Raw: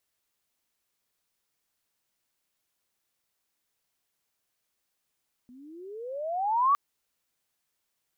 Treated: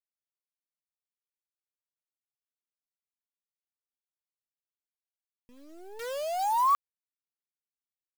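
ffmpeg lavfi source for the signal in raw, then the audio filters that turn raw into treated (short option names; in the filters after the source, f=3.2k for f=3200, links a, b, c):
-f lavfi -i "aevalsrc='pow(10,(-18+30*(t/1.26-1))/20)*sin(2*PI*240*1.26/(27.5*log(2)/12)*(exp(27.5*log(2)/12*t/1.26)-1))':d=1.26:s=44100"
-af "acrusher=bits=7:dc=4:mix=0:aa=0.000001"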